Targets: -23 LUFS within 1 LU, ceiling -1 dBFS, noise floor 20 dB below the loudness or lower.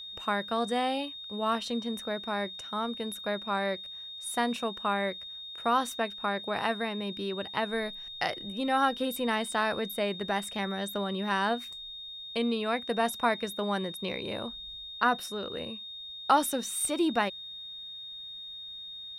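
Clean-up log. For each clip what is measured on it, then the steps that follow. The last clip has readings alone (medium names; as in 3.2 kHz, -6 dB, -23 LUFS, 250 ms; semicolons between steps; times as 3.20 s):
steady tone 3.7 kHz; tone level -40 dBFS; loudness -31.5 LUFS; peak level -11.5 dBFS; loudness target -23.0 LUFS
-> band-stop 3.7 kHz, Q 30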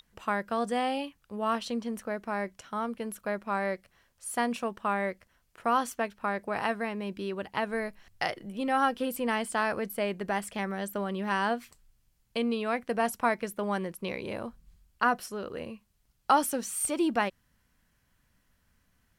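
steady tone not found; loudness -31.5 LUFS; peak level -11.0 dBFS; loudness target -23.0 LUFS
-> trim +8.5 dB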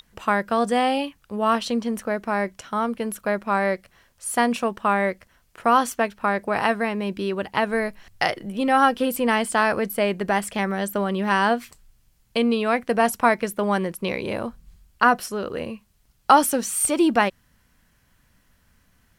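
loudness -23.0 LUFS; peak level -2.5 dBFS; noise floor -63 dBFS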